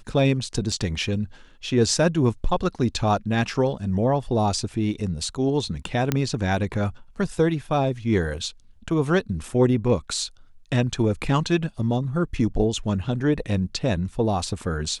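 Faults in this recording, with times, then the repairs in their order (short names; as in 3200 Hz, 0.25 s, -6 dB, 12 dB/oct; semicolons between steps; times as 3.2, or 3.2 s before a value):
0.72 gap 4.7 ms
6.12 pop -7 dBFS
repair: de-click; interpolate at 0.72, 4.7 ms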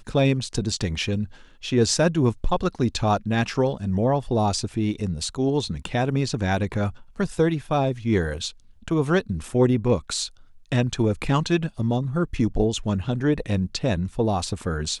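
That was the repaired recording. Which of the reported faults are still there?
none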